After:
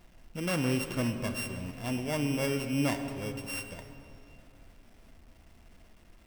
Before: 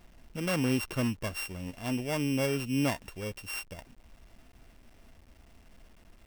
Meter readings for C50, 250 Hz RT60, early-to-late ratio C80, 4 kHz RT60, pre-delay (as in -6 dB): 7.5 dB, 3.2 s, 8.0 dB, 1.8 s, 3 ms